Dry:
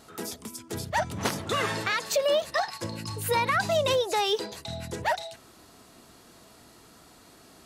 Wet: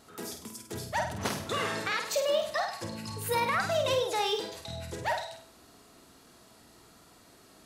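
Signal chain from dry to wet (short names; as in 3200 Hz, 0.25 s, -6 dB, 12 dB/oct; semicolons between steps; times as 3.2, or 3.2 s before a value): flutter echo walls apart 8.6 m, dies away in 0.5 s; gain -4.5 dB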